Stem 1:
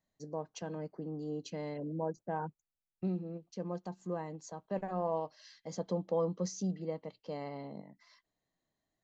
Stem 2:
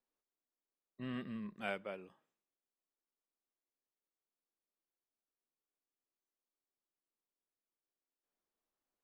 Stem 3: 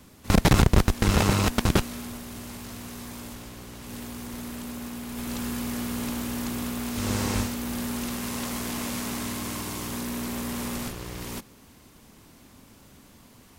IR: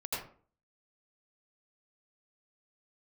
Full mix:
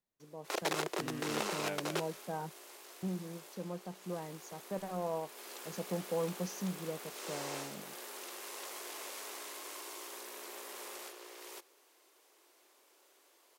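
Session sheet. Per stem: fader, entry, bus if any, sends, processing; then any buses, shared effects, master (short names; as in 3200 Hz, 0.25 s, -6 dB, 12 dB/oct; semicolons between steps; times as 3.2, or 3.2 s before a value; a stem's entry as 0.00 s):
-12.0 dB, 0.00 s, no send, AGC gain up to 9 dB
-3.5 dB, 0.00 s, no send, dry
-10.0 dB, 0.20 s, no send, Chebyshev high-pass 350 Hz, order 5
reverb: off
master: Doppler distortion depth 0.16 ms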